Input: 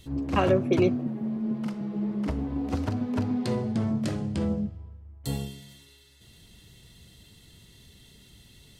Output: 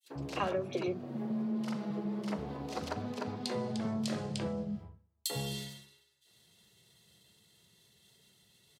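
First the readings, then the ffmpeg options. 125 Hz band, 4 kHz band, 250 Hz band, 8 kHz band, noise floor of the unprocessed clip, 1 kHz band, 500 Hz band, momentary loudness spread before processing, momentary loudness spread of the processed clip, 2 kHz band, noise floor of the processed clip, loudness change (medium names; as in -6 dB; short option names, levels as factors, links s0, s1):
-10.5 dB, +0.5 dB, -9.0 dB, +2.0 dB, -55 dBFS, -5.5 dB, -8.5 dB, 12 LU, 6 LU, -5.5 dB, -70 dBFS, -8.5 dB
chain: -filter_complex "[0:a]highpass=190,agate=range=0.0224:threshold=0.00562:ratio=3:detection=peak,adynamicequalizer=threshold=0.00178:dfrequency=4200:dqfactor=1:tfrequency=4200:tqfactor=1:attack=5:release=100:ratio=0.375:range=2.5:mode=boostabove:tftype=bell,acompressor=threshold=0.0126:ratio=6,equalizer=f=270:t=o:w=0.23:g=-13.5,acrossover=split=280|2500[s0][s1][s2];[s1]adelay=40[s3];[s0]adelay=90[s4];[s4][s3][s2]amix=inputs=3:normalize=0,volume=2.51"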